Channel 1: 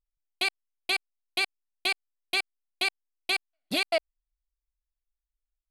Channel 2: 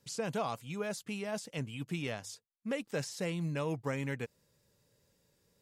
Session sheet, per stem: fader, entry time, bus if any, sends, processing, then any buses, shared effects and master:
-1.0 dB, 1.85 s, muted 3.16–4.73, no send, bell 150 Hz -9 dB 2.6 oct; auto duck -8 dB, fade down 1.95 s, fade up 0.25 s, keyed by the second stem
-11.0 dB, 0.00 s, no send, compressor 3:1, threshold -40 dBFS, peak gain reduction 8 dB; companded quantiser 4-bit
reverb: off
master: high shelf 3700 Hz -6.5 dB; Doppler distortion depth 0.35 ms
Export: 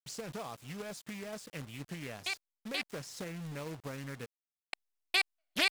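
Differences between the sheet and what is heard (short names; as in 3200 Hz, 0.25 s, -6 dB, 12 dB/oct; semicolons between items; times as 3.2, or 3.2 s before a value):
stem 2 -11.0 dB -> -1.0 dB; master: missing high shelf 3700 Hz -6.5 dB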